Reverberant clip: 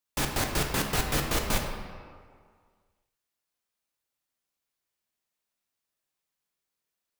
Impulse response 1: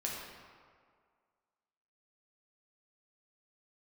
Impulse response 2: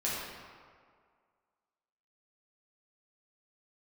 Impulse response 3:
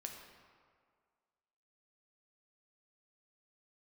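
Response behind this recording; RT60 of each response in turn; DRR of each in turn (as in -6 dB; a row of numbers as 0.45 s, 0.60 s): 3; 2.0 s, 2.0 s, 2.0 s; -3.5 dB, -7.5 dB, 2.0 dB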